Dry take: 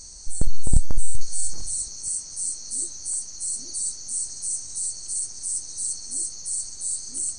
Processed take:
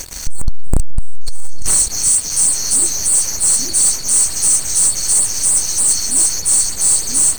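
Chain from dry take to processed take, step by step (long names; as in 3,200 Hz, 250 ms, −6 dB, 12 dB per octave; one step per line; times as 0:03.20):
auto-filter notch sine 3.3 Hz 430–6,400 Hz
leveller curve on the samples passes 5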